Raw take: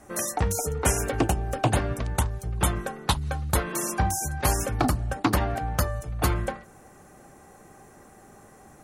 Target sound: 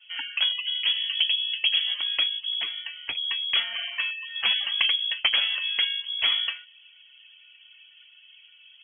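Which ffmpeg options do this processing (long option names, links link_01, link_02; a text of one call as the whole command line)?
ffmpeg -i in.wav -filter_complex "[0:a]asplit=3[link_01][link_02][link_03];[link_01]afade=type=out:start_time=0.8:duration=0.02[link_04];[link_02]equalizer=frequency=2400:width_type=o:width=1.4:gain=-13.5,afade=type=in:start_time=0.8:duration=0.02,afade=type=out:start_time=1.86:duration=0.02[link_05];[link_03]afade=type=in:start_time=1.86:duration=0.02[link_06];[link_04][link_05][link_06]amix=inputs=3:normalize=0,asettb=1/sr,asplit=3[link_07][link_08][link_09];[link_07]atrim=end=2.624[link_10];[link_08]atrim=start=2.62:end=3.15,asetpts=PTS-STARTPTS,afade=type=in:duration=0.004:curve=qsin,afade=type=out:start_time=0.526:duration=0.004:curve=qsin,acompressor=threshold=-32dB:ratio=2.5[link_11];[link_09]atrim=start=3.146[link_12];[link_10][link_11]acrossfade=duration=0.004:curve1=hsin:curve2=qsin[link_13];[link_13][link_12]acrossfade=duration=0.004:curve1=qsin:curve2=hsin,asettb=1/sr,asplit=3[link_14][link_15][link_16];[link_14]atrim=end=3.894[link_17];[link_15]atrim=start=3.89:end=4.35,asetpts=PTS-STARTPTS,afade=type=in:duration=0.004:curve=qsin,afade=type=out:start_time=0.456:duration=0.004:curve=qsin,highpass=frequency=340:poles=1[link_18];[link_16]atrim=start=4.346[link_19];[link_17][link_18]acrossfade=duration=0.004:curve1=hsin:curve2=qsin[link_20];[link_20][link_19]acrossfade=duration=0.004:curve1=qsin:curve2=hsin,lowpass=frequency=2900:width_type=q:width=0.5098,lowpass=frequency=2900:width_type=q:width=0.6013,lowpass=frequency=2900:width_type=q:width=0.9,lowpass=frequency=2900:width_type=q:width=2.563,afreqshift=-3400,afftdn=noise_reduction=13:noise_floor=-49" out.wav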